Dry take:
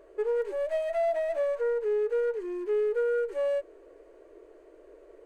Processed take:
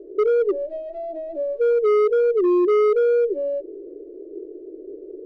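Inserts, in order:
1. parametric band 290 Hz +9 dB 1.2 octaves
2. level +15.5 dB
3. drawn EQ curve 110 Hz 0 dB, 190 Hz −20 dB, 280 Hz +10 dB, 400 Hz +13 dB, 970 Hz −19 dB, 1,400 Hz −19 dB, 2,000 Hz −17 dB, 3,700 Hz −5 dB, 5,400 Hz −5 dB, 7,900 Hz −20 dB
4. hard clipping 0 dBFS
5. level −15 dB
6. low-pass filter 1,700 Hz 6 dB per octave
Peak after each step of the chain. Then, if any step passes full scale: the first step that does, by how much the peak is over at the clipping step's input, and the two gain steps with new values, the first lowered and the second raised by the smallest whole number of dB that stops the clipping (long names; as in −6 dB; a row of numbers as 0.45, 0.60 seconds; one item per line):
−16.5, −1.0, +10.0, 0.0, −15.0, −15.0 dBFS
step 3, 10.0 dB
step 2 +5.5 dB, step 5 −5 dB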